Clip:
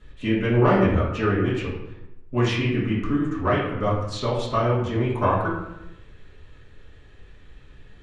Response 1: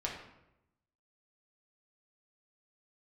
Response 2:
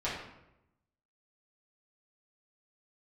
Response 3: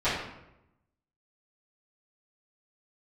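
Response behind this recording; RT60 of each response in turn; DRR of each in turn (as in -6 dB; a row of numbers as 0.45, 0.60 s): 2; 0.85, 0.85, 0.85 s; -3.0, -10.0, -17.0 dB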